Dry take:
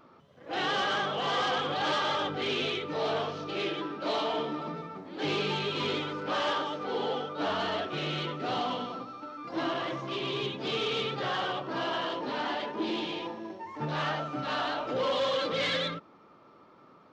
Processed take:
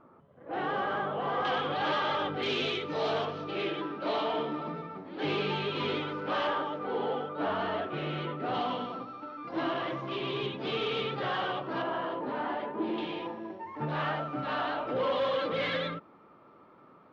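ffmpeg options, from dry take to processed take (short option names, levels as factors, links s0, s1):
-af "asetnsamples=n=441:p=0,asendcmd='1.45 lowpass f 3000;2.43 lowpass f 6400;3.25 lowpass f 3200;6.47 lowpass f 2100;8.54 lowpass f 3200;11.82 lowpass f 1600;12.98 lowpass f 2600',lowpass=1400"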